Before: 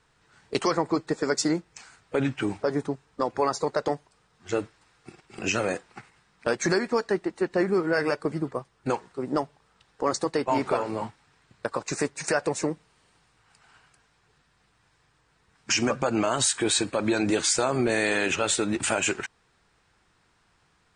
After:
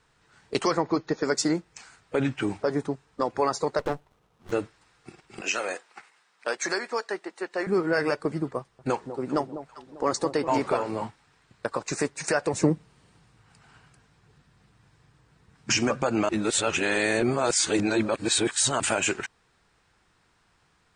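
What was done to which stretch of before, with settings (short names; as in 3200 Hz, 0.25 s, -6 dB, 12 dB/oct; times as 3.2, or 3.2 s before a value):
0.8–1.25 brick-wall FIR low-pass 6900 Hz
3.79–4.52 running maximum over 17 samples
5.41–7.67 Bessel high-pass 630 Hz
8.59–10.66 echo with dull and thin repeats by turns 0.198 s, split 880 Hz, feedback 58%, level -10 dB
12.53–15.78 bell 130 Hz +11 dB 2.9 oct
16.29–18.8 reverse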